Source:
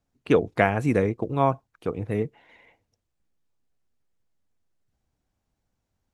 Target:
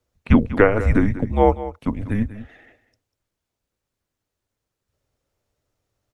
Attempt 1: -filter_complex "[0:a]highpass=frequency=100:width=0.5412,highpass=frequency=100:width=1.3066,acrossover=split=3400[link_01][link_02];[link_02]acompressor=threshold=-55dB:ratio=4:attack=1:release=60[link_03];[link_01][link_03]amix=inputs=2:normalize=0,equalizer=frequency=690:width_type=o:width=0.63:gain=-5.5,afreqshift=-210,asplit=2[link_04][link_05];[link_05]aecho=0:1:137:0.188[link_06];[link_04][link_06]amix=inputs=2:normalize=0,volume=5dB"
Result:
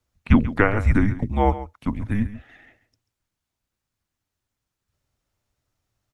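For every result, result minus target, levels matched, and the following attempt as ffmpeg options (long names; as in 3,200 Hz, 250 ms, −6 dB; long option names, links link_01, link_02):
echo 56 ms early; 500 Hz band −5.0 dB
-filter_complex "[0:a]highpass=frequency=100:width=0.5412,highpass=frequency=100:width=1.3066,acrossover=split=3400[link_01][link_02];[link_02]acompressor=threshold=-55dB:ratio=4:attack=1:release=60[link_03];[link_01][link_03]amix=inputs=2:normalize=0,equalizer=frequency=690:width_type=o:width=0.63:gain=-5.5,afreqshift=-210,asplit=2[link_04][link_05];[link_05]aecho=0:1:193:0.188[link_06];[link_04][link_06]amix=inputs=2:normalize=0,volume=5dB"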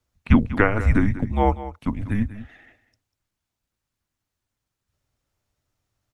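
500 Hz band −5.0 dB
-filter_complex "[0:a]highpass=frequency=100:width=0.5412,highpass=frequency=100:width=1.3066,acrossover=split=3400[link_01][link_02];[link_02]acompressor=threshold=-55dB:ratio=4:attack=1:release=60[link_03];[link_01][link_03]amix=inputs=2:normalize=0,equalizer=frequency=690:width_type=o:width=0.63:gain=3,afreqshift=-210,asplit=2[link_04][link_05];[link_05]aecho=0:1:193:0.188[link_06];[link_04][link_06]amix=inputs=2:normalize=0,volume=5dB"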